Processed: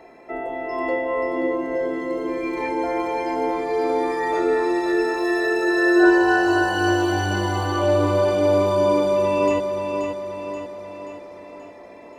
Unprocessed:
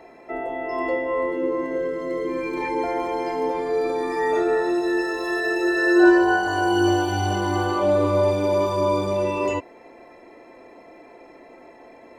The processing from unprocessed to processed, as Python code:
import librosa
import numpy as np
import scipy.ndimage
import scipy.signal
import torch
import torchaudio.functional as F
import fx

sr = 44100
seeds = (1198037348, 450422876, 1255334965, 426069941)

y = fx.echo_feedback(x, sr, ms=530, feedback_pct=54, wet_db=-6)